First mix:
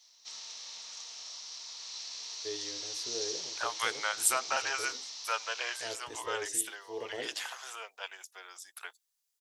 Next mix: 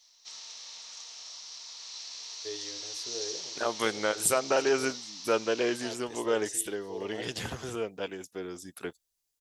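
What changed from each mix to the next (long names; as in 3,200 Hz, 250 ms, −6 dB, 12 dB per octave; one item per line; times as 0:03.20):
second voice: remove high-pass filter 820 Hz 24 dB per octave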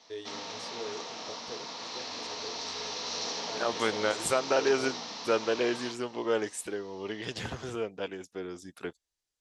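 first voice: entry −2.35 s
background: remove first difference
master: add high-frequency loss of the air 63 metres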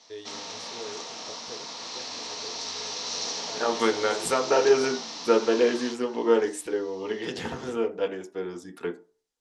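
second voice: send on
background: remove high-frequency loss of the air 91 metres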